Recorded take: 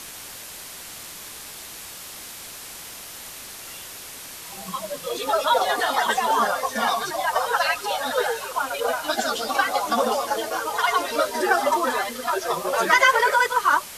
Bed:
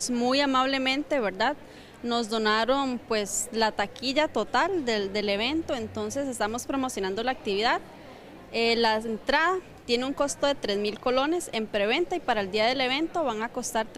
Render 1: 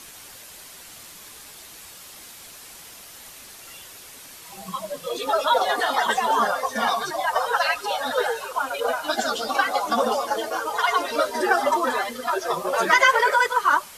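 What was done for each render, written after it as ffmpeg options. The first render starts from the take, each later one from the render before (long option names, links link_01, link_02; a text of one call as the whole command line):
ffmpeg -i in.wav -af "afftdn=noise_reduction=6:noise_floor=-39" out.wav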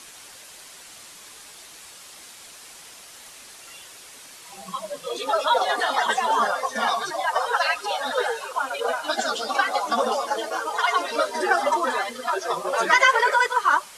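ffmpeg -i in.wav -af "lowpass=frequency=11000:width=0.5412,lowpass=frequency=11000:width=1.3066,lowshelf=frequency=230:gain=-8" out.wav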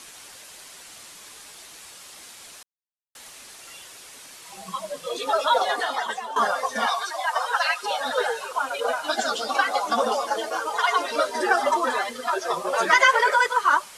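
ffmpeg -i in.wav -filter_complex "[0:a]asettb=1/sr,asplit=3[link_01][link_02][link_03];[link_01]atrim=end=6.864[link_04];[link_02]atrim=start=6.86:end=7.83,asetpts=PTS-STARTPTS,afade=type=in:duration=0.004:curve=qsin,afade=type=out:start_time=0.966:duration=0.004:curve=qsin,highpass=700[link_05];[link_03]atrim=start=7.826[link_06];[link_04][link_05]acrossfade=duration=0.004:curve1=hsin:curve2=qsin[link_07];[link_07][link_06]acrossfade=duration=0.004:curve1=qsin:curve2=hsin,asplit=4[link_08][link_09][link_10][link_11];[link_08]atrim=end=2.63,asetpts=PTS-STARTPTS,afade=type=out:start_time=2.626:duration=0.004:curve=hsin[link_12];[link_09]atrim=start=2.63:end=3.15,asetpts=PTS-STARTPTS,volume=0[link_13];[link_10]atrim=start=3.15:end=6.36,asetpts=PTS-STARTPTS,afade=type=in:duration=0.004:curve=hsin,afade=type=out:start_time=2.44:duration=0.77:silence=0.188365[link_14];[link_11]atrim=start=6.36,asetpts=PTS-STARTPTS,afade=type=in:duration=0.004:curve=hsin:silence=0.188365[link_15];[link_12][link_13][link_14][link_15]concat=n=4:v=0:a=1" out.wav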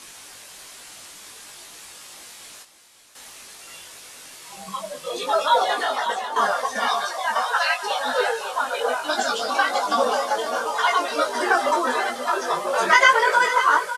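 ffmpeg -i in.wav -filter_complex "[0:a]asplit=2[link_01][link_02];[link_02]adelay=20,volume=-3.5dB[link_03];[link_01][link_03]amix=inputs=2:normalize=0,aecho=1:1:546:0.299" out.wav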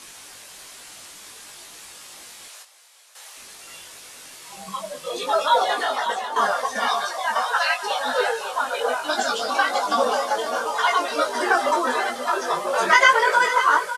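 ffmpeg -i in.wav -filter_complex "[0:a]asettb=1/sr,asplit=3[link_01][link_02][link_03];[link_01]atrim=end=2.484[link_04];[link_02]atrim=start=2.48:end=3.37,asetpts=PTS-STARTPTS,afade=type=in:duration=0.004:curve=qsin,afade=type=out:start_time=0.886:duration=0.004:curve=qsin,highpass=frequency=490:width=0.5412,highpass=frequency=490:width=1.3066[link_05];[link_03]atrim=start=3.366[link_06];[link_04][link_05]acrossfade=duration=0.004:curve1=hsin:curve2=qsin[link_07];[link_07][link_06]acrossfade=duration=0.004:curve1=qsin:curve2=hsin" out.wav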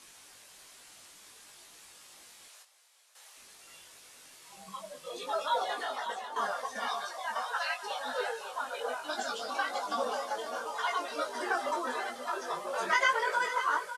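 ffmpeg -i in.wav -af "volume=-12dB" out.wav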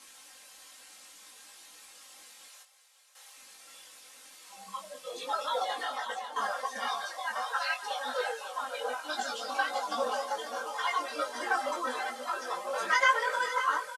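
ffmpeg -i in.wav -af "lowshelf=frequency=240:gain=-10,aecho=1:1:3.8:0.7" out.wav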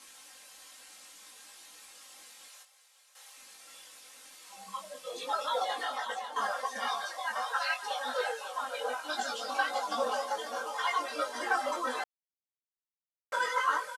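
ffmpeg -i in.wav -filter_complex "[0:a]asplit=3[link_01][link_02][link_03];[link_01]atrim=end=12.04,asetpts=PTS-STARTPTS,afade=type=out:start_time=12.036:duration=0.004:curve=hsin[link_04];[link_02]atrim=start=12.04:end=13.32,asetpts=PTS-STARTPTS,volume=0[link_05];[link_03]atrim=start=13.32,asetpts=PTS-STARTPTS,afade=type=in:duration=0.004:curve=hsin[link_06];[link_04][link_05][link_06]concat=n=3:v=0:a=1" out.wav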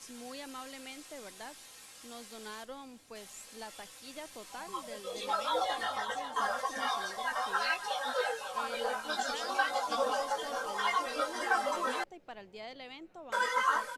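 ffmpeg -i in.wav -i bed.wav -filter_complex "[1:a]volume=-21.5dB[link_01];[0:a][link_01]amix=inputs=2:normalize=0" out.wav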